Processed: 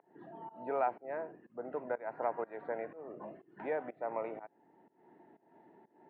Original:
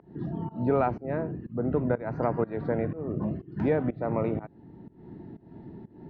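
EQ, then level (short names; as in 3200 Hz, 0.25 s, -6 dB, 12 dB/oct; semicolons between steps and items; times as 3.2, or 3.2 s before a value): ladder band-pass 1300 Hz, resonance 25%; air absorption 310 m; bell 1200 Hz -12 dB 0.89 oct; +14.5 dB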